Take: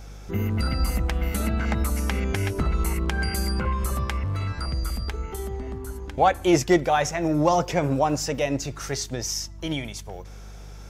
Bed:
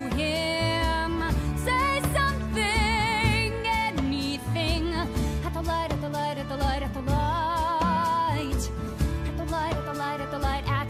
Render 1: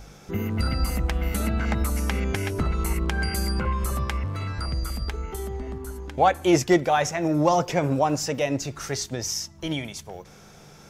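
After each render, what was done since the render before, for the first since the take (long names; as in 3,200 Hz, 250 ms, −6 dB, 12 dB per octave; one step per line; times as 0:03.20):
hum removal 50 Hz, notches 2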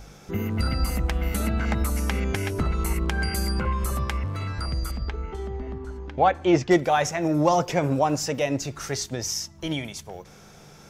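0:04.91–0:06.71: high-frequency loss of the air 150 metres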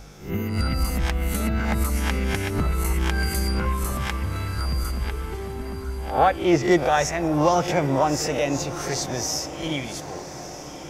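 peak hold with a rise ahead of every peak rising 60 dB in 0.40 s
on a send: feedback delay with all-pass diffusion 1,237 ms, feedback 58%, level −13.5 dB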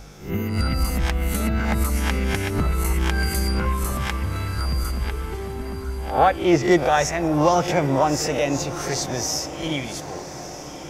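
level +1.5 dB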